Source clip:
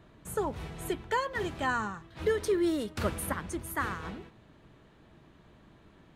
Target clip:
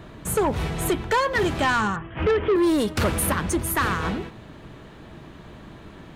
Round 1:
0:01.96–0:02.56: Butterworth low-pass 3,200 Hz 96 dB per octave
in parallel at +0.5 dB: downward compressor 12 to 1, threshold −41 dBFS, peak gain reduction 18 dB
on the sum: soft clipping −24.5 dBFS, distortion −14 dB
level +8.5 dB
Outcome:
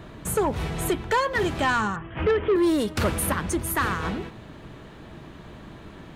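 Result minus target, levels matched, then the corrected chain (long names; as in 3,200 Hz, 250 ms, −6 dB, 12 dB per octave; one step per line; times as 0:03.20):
downward compressor: peak gain reduction +10 dB
0:01.96–0:02.56: Butterworth low-pass 3,200 Hz 96 dB per octave
in parallel at +0.5 dB: downward compressor 12 to 1, threshold −30 dBFS, peak gain reduction 8 dB
on the sum: soft clipping −24.5 dBFS, distortion −11 dB
level +8.5 dB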